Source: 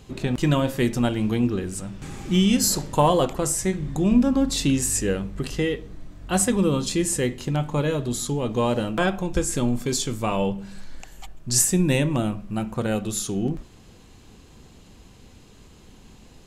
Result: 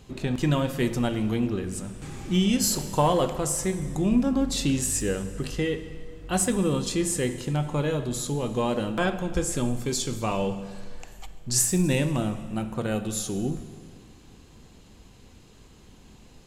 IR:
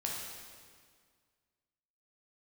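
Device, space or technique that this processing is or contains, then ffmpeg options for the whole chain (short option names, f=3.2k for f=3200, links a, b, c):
saturated reverb return: -filter_complex "[0:a]asplit=2[a][b];[1:a]atrim=start_sample=2205[c];[b][c]afir=irnorm=-1:irlink=0,asoftclip=type=tanh:threshold=-13.5dB,volume=-9dB[d];[a][d]amix=inputs=2:normalize=0,volume=-5dB"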